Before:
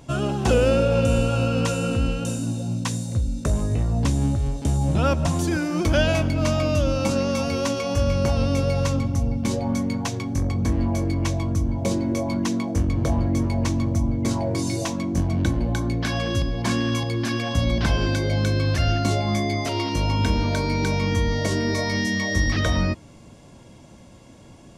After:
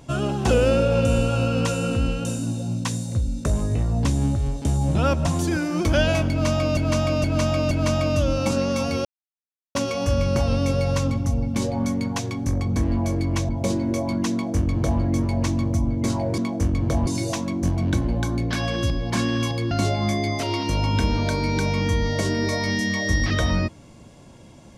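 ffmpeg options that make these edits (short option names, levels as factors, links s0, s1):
-filter_complex "[0:a]asplit=9[s0][s1][s2][s3][s4][s5][s6][s7][s8];[s0]atrim=end=6.772[s9];[s1]atrim=start=6.298:end=6.772[s10];[s2]atrim=start=6.298:end=6.772[s11];[s3]atrim=start=6.298:end=7.64,asetpts=PTS-STARTPTS,afade=t=out:st=1.338:d=0.004:c=hsin,apad=pad_dur=0.7[s12];[s4]atrim=start=7.64:end=11.382,asetpts=PTS-STARTPTS,afade=t=in:d=0.004:c=hsin[s13];[s5]atrim=start=11.698:end=14.592[s14];[s6]atrim=start=12.528:end=13.222[s15];[s7]atrim=start=14.588:end=17.232[s16];[s8]atrim=start=18.968[s17];[s9][s10]acrossfade=d=0.004:c1=hsin:c2=hsin[s18];[s18][s11]acrossfade=d=0.004:c1=hsin:c2=hsin[s19];[s12][s13]concat=n=2:v=0:a=1[s20];[s19][s20]acrossfade=d=0.004:c1=hsin:c2=hsin[s21];[s21][s14]acrossfade=d=0.004:c1=hsin:c2=hsin[s22];[s22][s15]acrossfade=d=0.004:c1=hsin:c2=hsin[s23];[s23][s16]acrossfade=d=0.004:c1=hsin:c2=hsin[s24];[s24][s17]acrossfade=d=0.004:c1=hsin:c2=hsin"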